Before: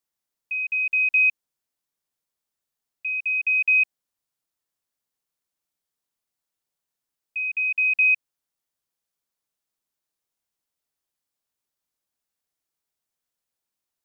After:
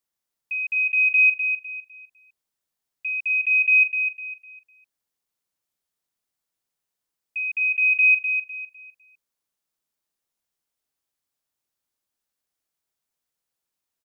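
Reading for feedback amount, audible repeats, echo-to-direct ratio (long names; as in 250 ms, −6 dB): 30%, 3, −6.5 dB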